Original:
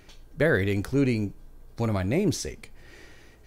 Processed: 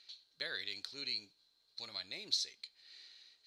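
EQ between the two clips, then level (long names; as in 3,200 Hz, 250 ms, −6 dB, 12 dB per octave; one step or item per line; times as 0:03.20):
resonant band-pass 4,100 Hz, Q 12
+12.0 dB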